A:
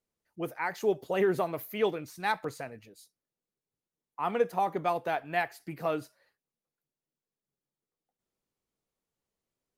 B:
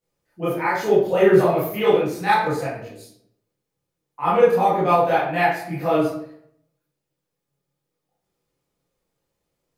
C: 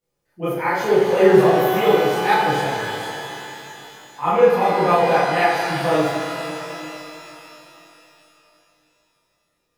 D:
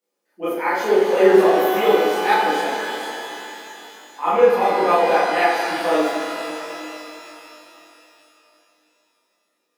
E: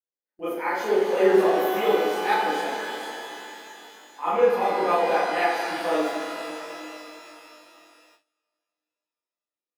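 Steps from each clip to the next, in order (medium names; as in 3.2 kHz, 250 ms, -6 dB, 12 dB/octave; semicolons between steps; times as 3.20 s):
reverberation RT60 0.65 s, pre-delay 18 ms, DRR -11 dB
pitch-shifted reverb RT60 3.4 s, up +12 st, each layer -8 dB, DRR 3 dB
steep high-pass 210 Hz 48 dB/octave
gate with hold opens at -41 dBFS; trim -5.5 dB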